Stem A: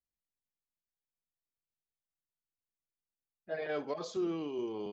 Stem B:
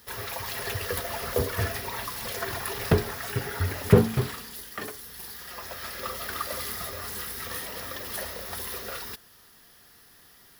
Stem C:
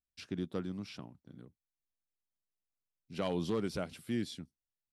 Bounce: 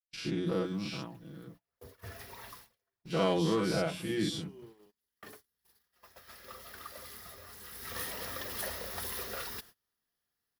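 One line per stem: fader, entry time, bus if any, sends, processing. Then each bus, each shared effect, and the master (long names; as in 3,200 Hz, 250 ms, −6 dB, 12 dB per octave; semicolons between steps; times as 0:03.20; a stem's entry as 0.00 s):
−15.0 dB, 0.00 s, no send, no processing
0:07.63 −14.5 dB → 0:07.98 −3.5 dB, 0.45 s, no send, automatic ducking −21 dB, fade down 0.50 s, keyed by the third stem
−0.5 dB, 0.00 s, no send, every bin's largest magnitude spread in time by 120 ms; mains-hum notches 60/120/180/240/300 Hz; comb filter 6.1 ms, depth 83%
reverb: not used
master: noise gate −52 dBFS, range −28 dB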